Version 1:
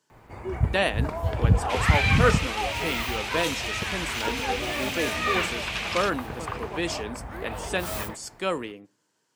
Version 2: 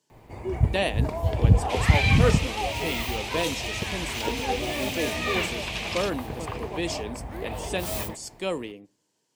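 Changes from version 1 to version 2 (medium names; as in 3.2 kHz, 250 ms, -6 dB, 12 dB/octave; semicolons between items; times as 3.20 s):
first sound: send on; master: add peaking EQ 1.4 kHz -10.5 dB 0.79 oct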